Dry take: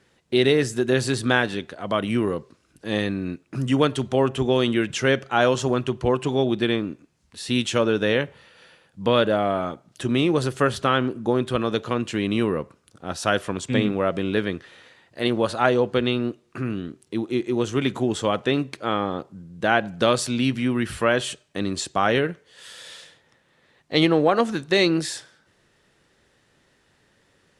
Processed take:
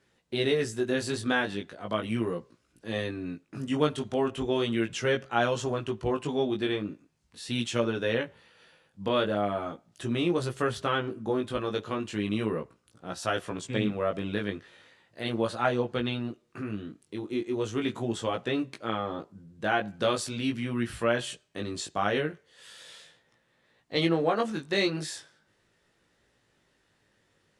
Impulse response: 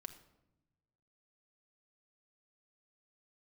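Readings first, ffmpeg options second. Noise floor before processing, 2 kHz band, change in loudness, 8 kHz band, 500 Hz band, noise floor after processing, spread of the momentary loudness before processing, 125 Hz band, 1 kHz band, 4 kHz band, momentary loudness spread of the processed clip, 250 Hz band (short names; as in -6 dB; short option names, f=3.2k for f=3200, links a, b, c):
-64 dBFS, -7.0 dB, -7.0 dB, -7.0 dB, -7.0 dB, -71 dBFS, 11 LU, -7.5 dB, -6.5 dB, -7.0 dB, 12 LU, -7.5 dB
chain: -af "flanger=delay=17:depth=2.8:speed=0.38,volume=-4dB"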